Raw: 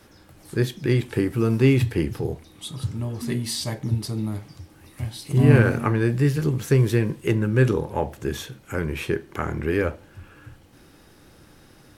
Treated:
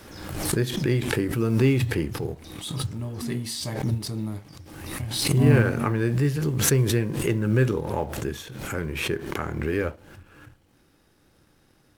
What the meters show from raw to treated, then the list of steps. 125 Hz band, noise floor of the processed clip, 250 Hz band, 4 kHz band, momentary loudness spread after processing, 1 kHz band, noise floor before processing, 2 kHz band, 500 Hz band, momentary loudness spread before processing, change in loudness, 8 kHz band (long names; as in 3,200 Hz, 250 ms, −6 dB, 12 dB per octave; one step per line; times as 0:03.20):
−2.5 dB, −62 dBFS, −2.0 dB, +3.0 dB, 13 LU, −1.0 dB, −52 dBFS, −1.0 dB, −2.5 dB, 13 LU, −2.0 dB, +6.5 dB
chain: mu-law and A-law mismatch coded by A
background raised ahead of every attack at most 45 dB per second
level −3 dB